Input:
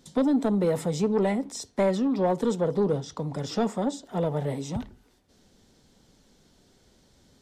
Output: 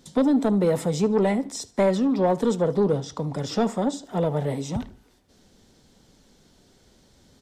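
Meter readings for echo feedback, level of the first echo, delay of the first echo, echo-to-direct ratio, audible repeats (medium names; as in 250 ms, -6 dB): 38%, -22.0 dB, 74 ms, -21.5 dB, 2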